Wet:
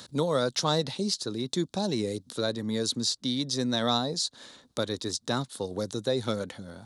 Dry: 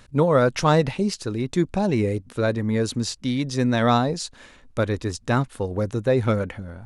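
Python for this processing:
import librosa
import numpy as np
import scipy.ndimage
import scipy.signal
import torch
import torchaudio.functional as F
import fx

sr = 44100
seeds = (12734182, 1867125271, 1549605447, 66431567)

y = scipy.signal.sosfilt(scipy.signal.butter(2, 150.0, 'highpass', fs=sr, output='sos'), x)
y = fx.high_shelf_res(y, sr, hz=3100.0, db=7.0, q=3.0)
y = fx.band_squash(y, sr, depth_pct=40)
y = y * librosa.db_to_amplitude(-7.0)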